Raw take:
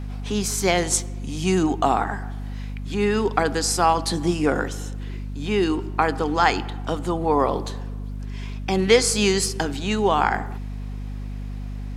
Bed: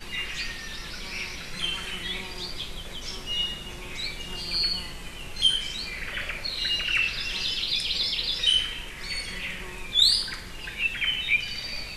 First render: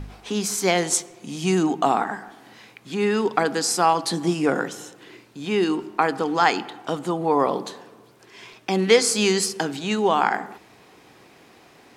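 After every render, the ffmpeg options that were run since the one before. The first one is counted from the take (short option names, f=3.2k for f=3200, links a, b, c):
-af "bandreject=f=50:t=h:w=4,bandreject=f=100:t=h:w=4,bandreject=f=150:t=h:w=4,bandreject=f=200:t=h:w=4,bandreject=f=250:t=h:w=4"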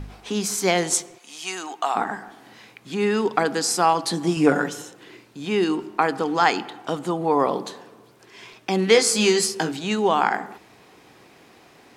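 -filter_complex "[0:a]asplit=3[a][b][c];[a]afade=t=out:st=1.17:d=0.02[d];[b]highpass=880,afade=t=in:st=1.17:d=0.02,afade=t=out:st=1.95:d=0.02[e];[c]afade=t=in:st=1.95:d=0.02[f];[d][e][f]amix=inputs=3:normalize=0,asettb=1/sr,asplit=3[g][h][i];[g]atrim=end=4.364[j];[h]atrim=start=4.36:end=4.82,asetpts=PTS-STARTPTS,afade=t=in:d=0.004:c=qsin,afade=t=out:st=0.456:d=0.004:c=qsin,aecho=1:1:6.9:0.8,atrim=end_sample=20286[k];[i]atrim=start=4.816[l];[j][k]acrossfade=d=0.004:c1=hsin:c2=qsin[m];[m][l]acrossfade=d=0.004:c1=qsin:c2=hsin,asettb=1/sr,asplit=3[n][o][p];[n]atrim=end=8.934[q];[o]atrim=start=8.93:end=9.72,asetpts=PTS-STARTPTS,afade=t=in:d=0.004:c=qsin,afade=t=out:st=0.786:d=0.004:c=qsin,asplit=2[r][s];[s]adelay=18,volume=-5.5dB[t];[r][t]amix=inputs=2:normalize=0,atrim=end_sample=34839[u];[p]atrim=start=9.716[v];[q][u]acrossfade=d=0.004:c1=hsin:c2=qsin[w];[w][v]acrossfade=d=0.004:c1=qsin:c2=hsin"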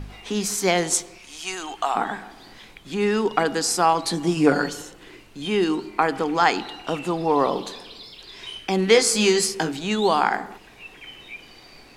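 -filter_complex "[1:a]volume=-15.5dB[a];[0:a][a]amix=inputs=2:normalize=0"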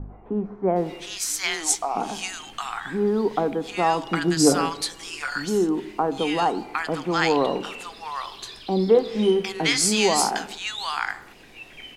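-filter_complex "[0:a]acrossover=split=1100[a][b];[b]adelay=760[c];[a][c]amix=inputs=2:normalize=0"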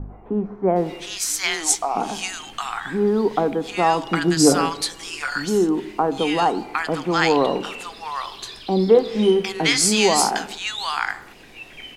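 -af "volume=3dB,alimiter=limit=-2dB:level=0:latency=1"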